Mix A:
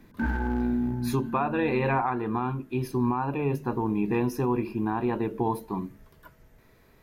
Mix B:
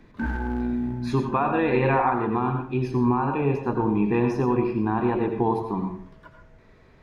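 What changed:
speech: add air absorption 110 m; reverb: on, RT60 0.50 s

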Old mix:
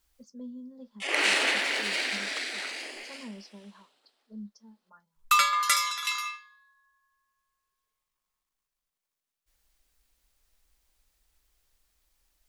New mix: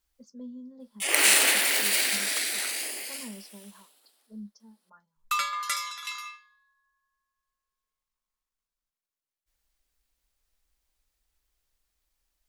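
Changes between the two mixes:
first sound: remove air absorption 130 m; second sound -6.0 dB

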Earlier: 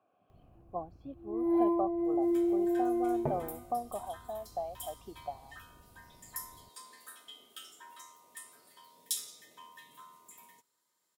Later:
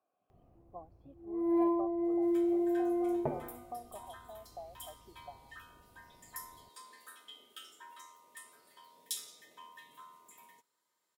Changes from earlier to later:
speech -10.0 dB; master: add tone controls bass -5 dB, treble -5 dB

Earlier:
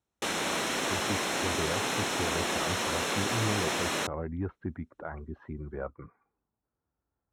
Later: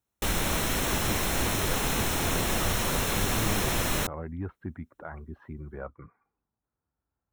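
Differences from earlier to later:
speech: add bell 420 Hz -3.5 dB 1.6 oct; background: remove BPF 260–7600 Hz

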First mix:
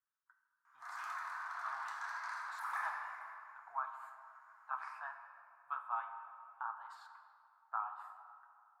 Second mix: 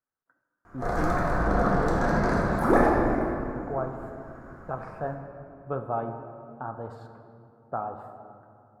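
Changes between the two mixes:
background +11.0 dB; master: remove elliptic high-pass 970 Hz, stop band 50 dB

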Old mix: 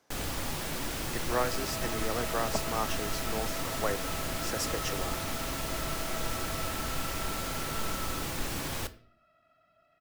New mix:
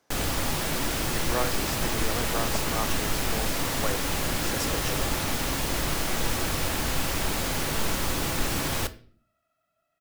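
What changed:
first sound +7.0 dB; second sound -9.5 dB

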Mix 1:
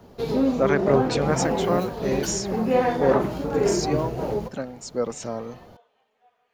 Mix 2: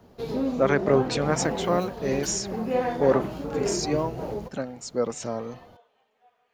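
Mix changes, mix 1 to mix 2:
background -3.5 dB; reverb: off

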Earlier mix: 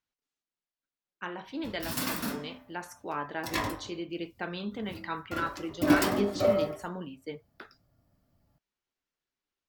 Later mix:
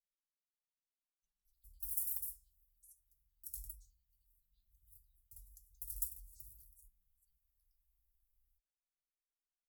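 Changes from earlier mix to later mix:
speech -6.0 dB; master: add inverse Chebyshev band-stop 240–2100 Hz, stop band 80 dB

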